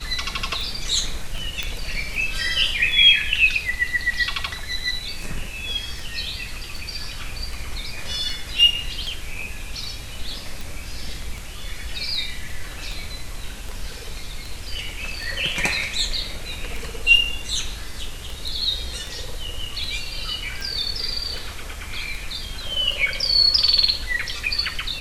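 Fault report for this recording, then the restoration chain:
tick 78 rpm
1.63 s: pop -10 dBFS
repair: de-click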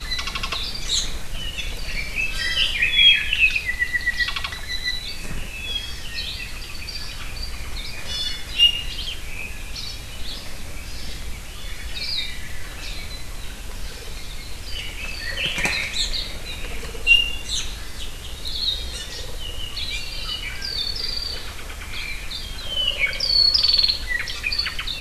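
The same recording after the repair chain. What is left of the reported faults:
nothing left

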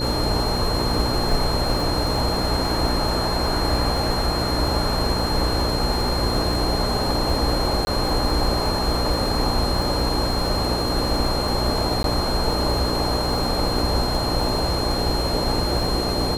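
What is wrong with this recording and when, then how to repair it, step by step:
buzz 60 Hz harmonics 9 -27 dBFS
crackle 35 per s -26 dBFS
whine 4.2 kHz -27 dBFS
7.85–7.87 s: dropout 20 ms
12.03–12.04 s: dropout 12 ms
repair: de-click; de-hum 60 Hz, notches 9; band-stop 4.2 kHz, Q 30; interpolate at 7.85 s, 20 ms; interpolate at 12.03 s, 12 ms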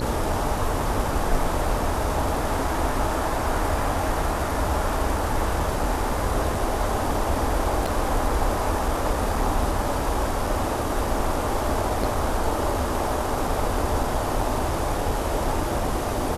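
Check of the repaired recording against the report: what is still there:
nothing left

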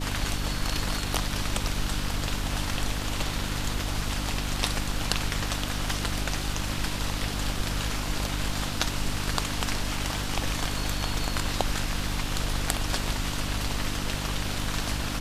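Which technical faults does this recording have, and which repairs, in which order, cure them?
hum 50 Hz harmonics 6 -33 dBFS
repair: de-hum 50 Hz, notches 6

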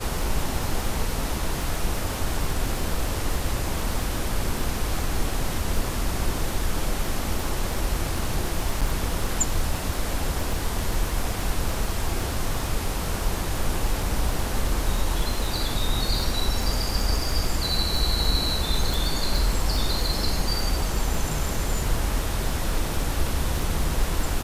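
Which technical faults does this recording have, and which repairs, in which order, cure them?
crackle 22 per s -26 dBFS
8.81–8.82 s: dropout 6.5 ms
18.94 s: pop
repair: de-click; interpolate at 8.81 s, 6.5 ms

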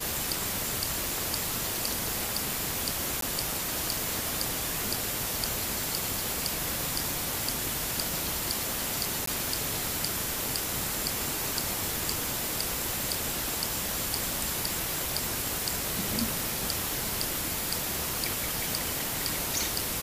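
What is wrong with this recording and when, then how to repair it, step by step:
3.21–3.22 s: dropout 13 ms
9.26–9.27 s: dropout 14 ms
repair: interpolate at 3.21 s, 13 ms; interpolate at 9.26 s, 14 ms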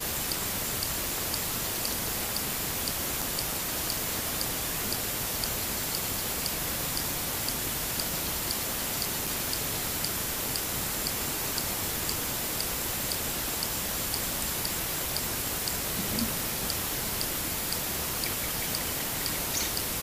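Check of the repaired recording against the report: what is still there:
nothing left

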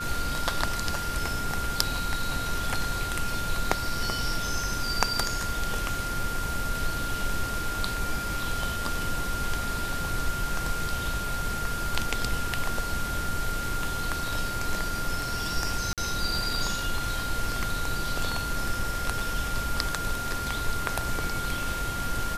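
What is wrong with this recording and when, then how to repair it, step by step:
whine 1.4 kHz -32 dBFS
15.93–15.98 s: dropout 47 ms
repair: band-stop 1.4 kHz, Q 30; interpolate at 15.93 s, 47 ms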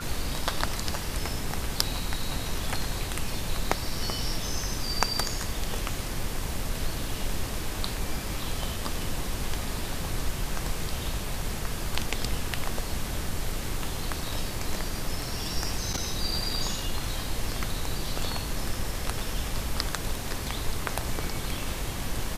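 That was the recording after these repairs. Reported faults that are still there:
nothing left

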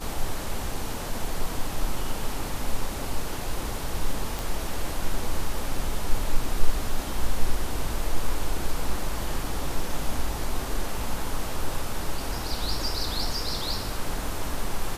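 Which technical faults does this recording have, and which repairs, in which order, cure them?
4.39 s: pop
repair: de-click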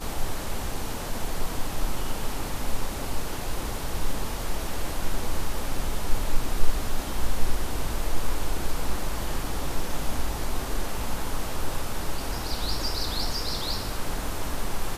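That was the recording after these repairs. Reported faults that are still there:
nothing left

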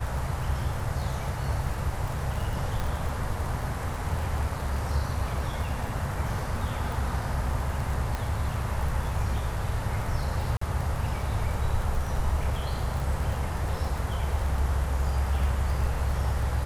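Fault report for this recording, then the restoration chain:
crackle 23 per s -31 dBFS
2.80 s: pop
8.15 s: pop -17 dBFS
10.57–10.61 s: dropout 44 ms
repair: de-click; interpolate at 10.57 s, 44 ms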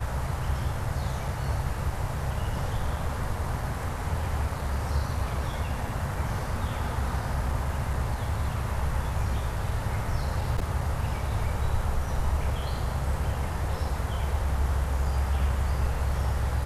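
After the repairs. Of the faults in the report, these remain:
2.80 s: pop

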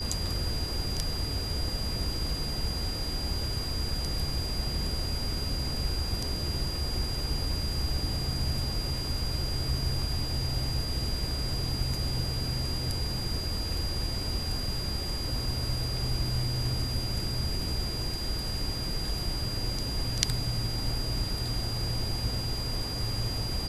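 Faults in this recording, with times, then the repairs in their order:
whine 4.8 kHz -35 dBFS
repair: band-stop 4.8 kHz, Q 30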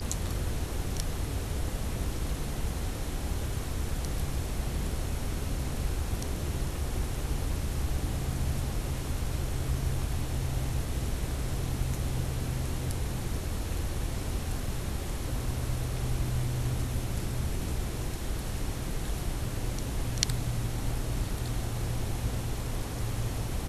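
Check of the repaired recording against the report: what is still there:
nothing left

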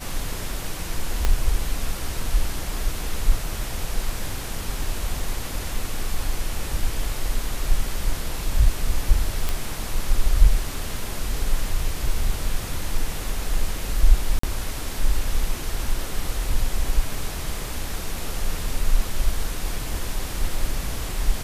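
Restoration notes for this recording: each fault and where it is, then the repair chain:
1.25 s: pop -7 dBFS
9.49 s: pop
14.39–14.43 s: dropout 44 ms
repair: de-click; interpolate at 14.39 s, 44 ms

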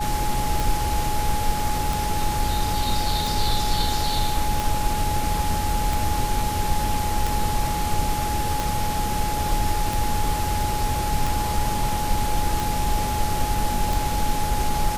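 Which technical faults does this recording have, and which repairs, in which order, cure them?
tick 45 rpm
whine 840 Hz -26 dBFS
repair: de-click; band-stop 840 Hz, Q 30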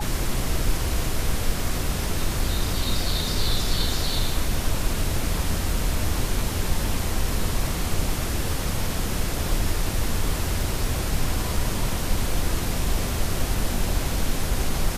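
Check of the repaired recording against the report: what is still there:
nothing left

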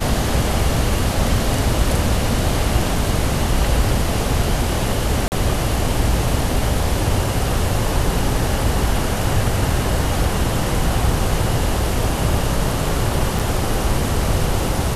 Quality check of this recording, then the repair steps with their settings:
5.28–5.32 s: dropout 39 ms
13.39–13.40 s: dropout 5.3 ms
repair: interpolate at 5.28 s, 39 ms; interpolate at 13.39 s, 5.3 ms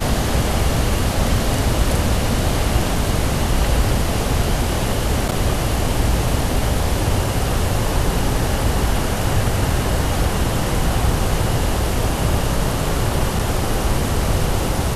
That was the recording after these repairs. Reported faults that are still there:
nothing left

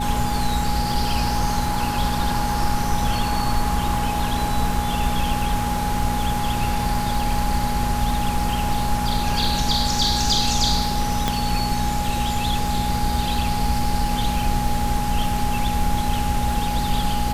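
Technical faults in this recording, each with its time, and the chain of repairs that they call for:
crackle 45 per s -29 dBFS
hum 60 Hz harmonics 4 -27 dBFS
whine 830 Hz -25 dBFS
11.28 s: pop -6 dBFS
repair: de-click; de-hum 60 Hz, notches 4; band-stop 830 Hz, Q 30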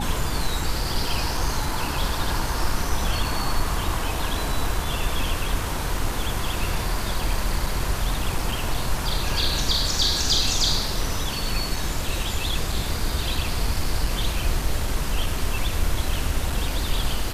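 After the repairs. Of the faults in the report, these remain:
nothing left

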